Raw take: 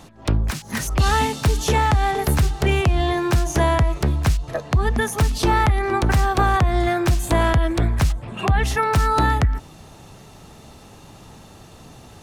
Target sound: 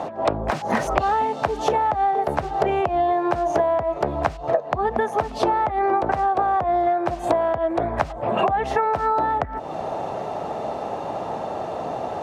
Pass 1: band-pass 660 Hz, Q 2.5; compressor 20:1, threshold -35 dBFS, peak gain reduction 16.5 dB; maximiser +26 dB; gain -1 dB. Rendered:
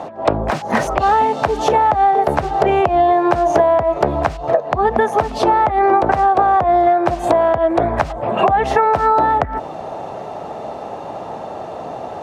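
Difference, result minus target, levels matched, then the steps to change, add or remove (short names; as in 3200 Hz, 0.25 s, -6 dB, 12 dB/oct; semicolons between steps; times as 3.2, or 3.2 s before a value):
compressor: peak gain reduction -7 dB
change: compressor 20:1, threshold -42.5 dBFS, peak gain reduction 24 dB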